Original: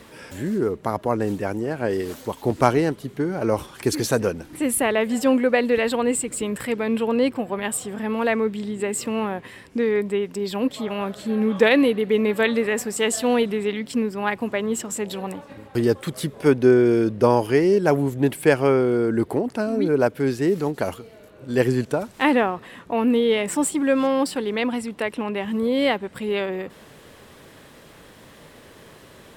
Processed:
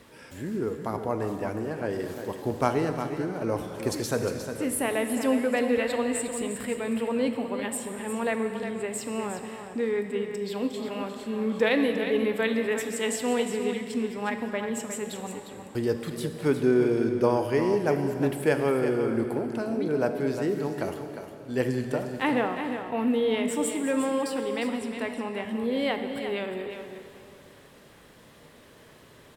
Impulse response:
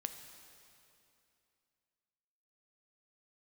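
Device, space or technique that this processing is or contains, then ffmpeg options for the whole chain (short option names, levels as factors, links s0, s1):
cave: -filter_complex "[0:a]aecho=1:1:356:0.355[s0];[1:a]atrim=start_sample=2205[s1];[s0][s1]afir=irnorm=-1:irlink=0,volume=0.562"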